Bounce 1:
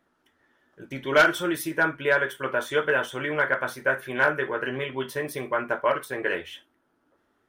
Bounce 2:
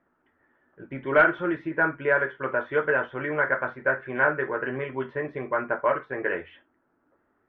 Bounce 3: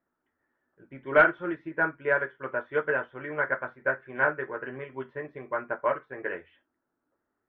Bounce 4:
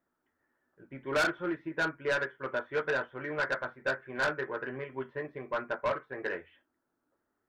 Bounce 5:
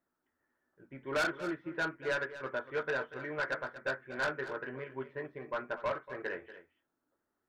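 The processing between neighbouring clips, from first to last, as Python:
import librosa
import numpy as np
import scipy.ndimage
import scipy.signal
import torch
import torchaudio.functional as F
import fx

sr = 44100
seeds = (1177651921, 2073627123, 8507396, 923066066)

y1 = scipy.signal.sosfilt(scipy.signal.butter(4, 2100.0, 'lowpass', fs=sr, output='sos'), x)
y2 = fx.upward_expand(y1, sr, threshold_db=-37.0, expansion=1.5)
y3 = 10.0 ** (-24.0 / 20.0) * np.tanh(y2 / 10.0 ** (-24.0 / 20.0))
y4 = y3 + 10.0 ** (-14.0 / 20.0) * np.pad(y3, (int(238 * sr / 1000.0), 0))[:len(y3)]
y4 = F.gain(torch.from_numpy(y4), -3.5).numpy()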